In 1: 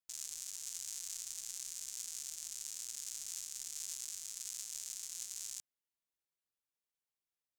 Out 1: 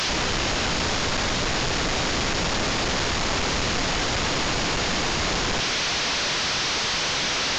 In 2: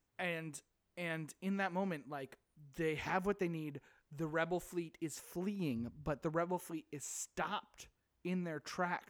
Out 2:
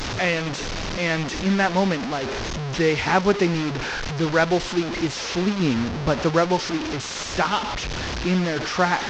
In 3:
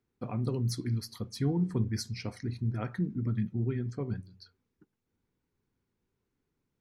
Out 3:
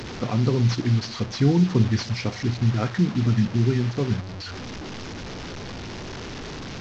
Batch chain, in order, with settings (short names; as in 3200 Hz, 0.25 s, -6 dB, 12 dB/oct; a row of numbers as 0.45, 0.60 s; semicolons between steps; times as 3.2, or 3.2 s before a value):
delta modulation 32 kbps, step -39 dBFS; match loudness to -23 LUFS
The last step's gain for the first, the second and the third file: +21.5, +17.5, +10.5 dB